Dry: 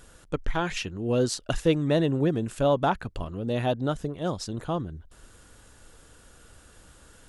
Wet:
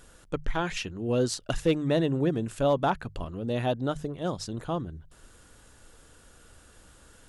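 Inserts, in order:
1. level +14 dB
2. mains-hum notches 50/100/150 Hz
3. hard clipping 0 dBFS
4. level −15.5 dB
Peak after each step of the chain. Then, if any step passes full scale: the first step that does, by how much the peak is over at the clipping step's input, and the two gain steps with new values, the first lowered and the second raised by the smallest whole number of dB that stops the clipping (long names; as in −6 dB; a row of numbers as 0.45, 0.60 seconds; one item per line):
+3.0, +3.0, 0.0, −15.5 dBFS
step 1, 3.0 dB
step 1 +11 dB, step 4 −12.5 dB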